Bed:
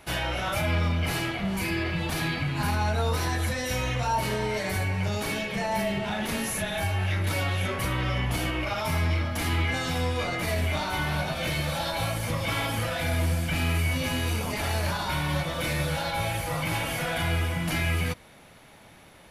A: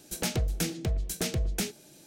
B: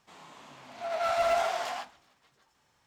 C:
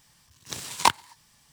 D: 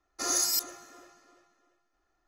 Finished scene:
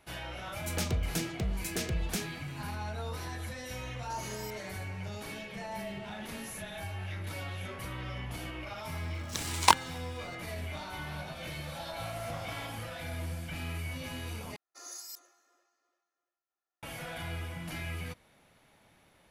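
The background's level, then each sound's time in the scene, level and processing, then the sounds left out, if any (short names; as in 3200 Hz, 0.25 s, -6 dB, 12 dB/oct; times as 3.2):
bed -12 dB
0.55 add A -4 dB
3.91 add D -8.5 dB + compressor 3:1, threshold -39 dBFS
8.83 add C -1.5 dB
10.95 add B -16.5 dB + spectral trails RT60 0.50 s
14.56 replace with D -17.5 dB + HPF 440 Hz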